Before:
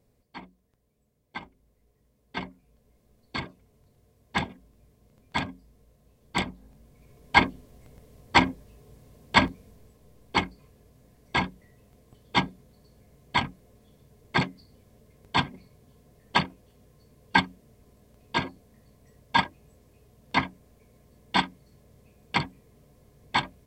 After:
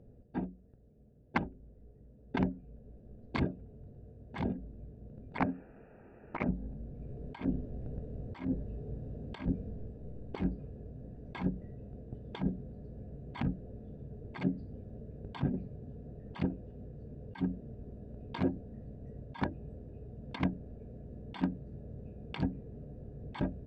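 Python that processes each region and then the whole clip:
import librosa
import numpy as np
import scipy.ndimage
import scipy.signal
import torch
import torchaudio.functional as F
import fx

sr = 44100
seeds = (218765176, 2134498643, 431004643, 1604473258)

y = fx.chain(x, sr, fx.highpass(hz=370.0, slope=6),
    fx.high_shelf_res(hz=4500.0, db=14.0, q=3.0),
    fx.resample_bad(factor=8, down='none', up='filtered'), at=(5.38, 6.49))
y = fx.wiener(y, sr, points=41)
y = fx.over_compress(y, sr, threshold_db=-38.0, ratio=-1.0)
y = fx.lowpass(y, sr, hz=2500.0, slope=6)
y = y * librosa.db_to_amplitude(3.0)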